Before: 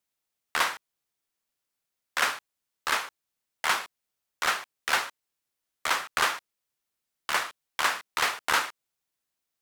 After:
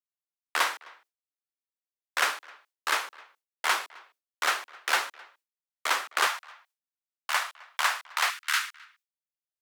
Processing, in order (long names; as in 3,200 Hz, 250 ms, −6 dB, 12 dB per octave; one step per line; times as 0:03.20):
far-end echo of a speakerphone 260 ms, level −22 dB
noise gate with hold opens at −51 dBFS
high-pass filter 300 Hz 24 dB per octave, from 0:06.27 640 Hz, from 0:08.30 1,400 Hz